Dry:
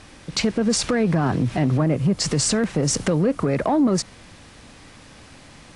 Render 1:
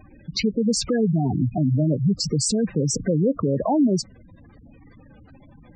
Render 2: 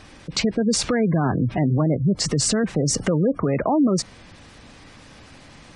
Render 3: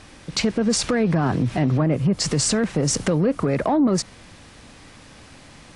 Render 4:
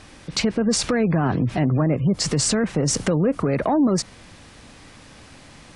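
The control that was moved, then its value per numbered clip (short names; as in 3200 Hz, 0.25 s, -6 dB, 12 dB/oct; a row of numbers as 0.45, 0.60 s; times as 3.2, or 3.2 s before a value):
spectral gate, under each frame's peak: -10, -25, -55, -40 dB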